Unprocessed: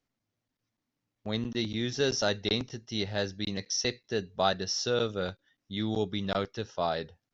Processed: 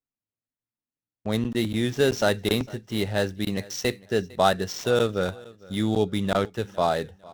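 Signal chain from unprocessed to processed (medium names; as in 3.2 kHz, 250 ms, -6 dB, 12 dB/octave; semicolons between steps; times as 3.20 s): median filter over 9 samples; gate with hold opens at -58 dBFS; feedback delay 454 ms, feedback 31%, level -22.5 dB; trim +7 dB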